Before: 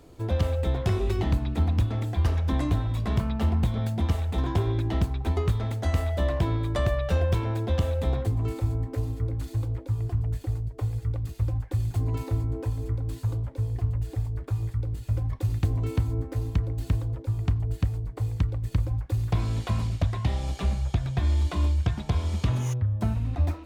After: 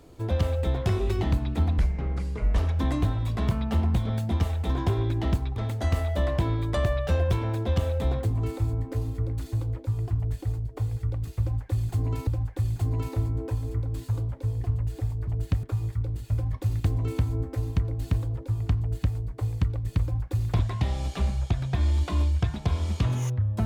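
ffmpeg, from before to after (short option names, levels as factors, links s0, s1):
-filter_complex "[0:a]asplit=8[s0][s1][s2][s3][s4][s5][s6][s7];[s0]atrim=end=1.784[s8];[s1]atrim=start=1.78:end=2.27,asetpts=PTS-STARTPTS,asetrate=26901,aresample=44100[s9];[s2]atrim=start=2.266:end=5.252[s10];[s3]atrim=start=5.578:end=12.292[s11];[s4]atrim=start=11.418:end=14.422[s12];[s5]atrim=start=17.578:end=17.942[s13];[s6]atrim=start=14.418:end=19.382[s14];[s7]atrim=start=20.028[s15];[s8][s9]acrossfade=d=0.004:c1=hsin:c2=hsin[s16];[s16][s10]acrossfade=d=0.004:c1=hsin:c2=hsin[s17];[s17][s11]acrossfade=d=0.004:c1=hsin:c2=hsin[s18];[s18][s12]acrossfade=d=0.004:c1=hsin:c2=hsin[s19];[s19][s13]acrossfade=d=0.004:c1=hsin:c2=hsin[s20];[s20][s14]acrossfade=d=0.004:c1=hsin:c2=hsin[s21];[s21][s15]acrossfade=d=0.004:c1=hsin:c2=hsin"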